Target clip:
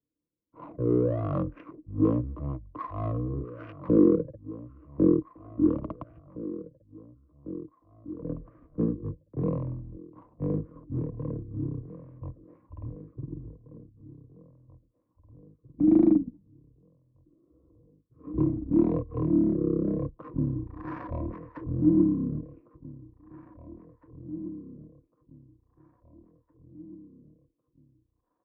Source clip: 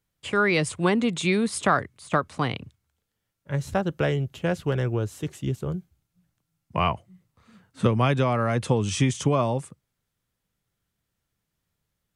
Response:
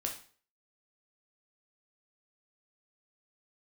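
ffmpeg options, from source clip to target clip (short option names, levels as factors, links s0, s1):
-filter_complex "[0:a]equalizer=f=360:w=0.81:g=8.5,acrossover=split=490|1200[s0][s1][s2];[s2]adynamicsmooth=sensitivity=5.5:basefreq=1800[s3];[s0][s1][s3]amix=inputs=3:normalize=0,asetrate=30296,aresample=44100,atempo=1.45565,asplit=2[s4][s5];[s5]asoftclip=type=hard:threshold=0.119,volume=0.473[s6];[s4][s6]amix=inputs=2:normalize=0,asplit=3[s7][s8][s9];[s7]bandpass=f=730:t=q:w=8,volume=1[s10];[s8]bandpass=f=1090:t=q:w=8,volume=0.501[s11];[s9]bandpass=f=2440:t=q:w=8,volume=0.355[s12];[s10][s11][s12]amix=inputs=3:normalize=0,asplit=2[s13][s14];[s14]adelay=1053,lowpass=f=2700:p=1,volume=0.158,asplit=2[s15][s16];[s16]adelay=1053,lowpass=f=2700:p=1,volume=0.37,asplit=2[s17][s18];[s18]adelay=1053,lowpass=f=2700:p=1,volume=0.37[s19];[s13][s15][s17][s19]amix=inputs=4:normalize=0,asetrate=18846,aresample=44100,volume=2"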